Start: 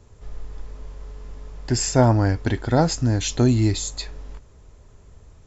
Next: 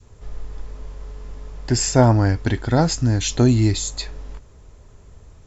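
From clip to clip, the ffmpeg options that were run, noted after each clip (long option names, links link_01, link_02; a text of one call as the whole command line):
ffmpeg -i in.wav -af "adynamicequalizer=threshold=0.0224:dfrequency=570:dqfactor=0.71:tfrequency=570:tqfactor=0.71:attack=5:release=100:ratio=0.375:range=2:mode=cutabove:tftype=bell,volume=2.5dB" out.wav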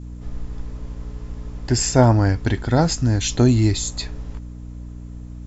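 ffmpeg -i in.wav -af "aeval=exprs='val(0)+0.0224*(sin(2*PI*60*n/s)+sin(2*PI*2*60*n/s)/2+sin(2*PI*3*60*n/s)/3+sin(2*PI*4*60*n/s)/4+sin(2*PI*5*60*n/s)/5)':channel_layout=same" out.wav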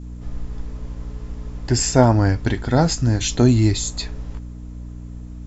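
ffmpeg -i in.wav -af "flanger=delay=4.3:depth=1.7:regen=-80:speed=1.5:shape=sinusoidal,volume=5dB" out.wav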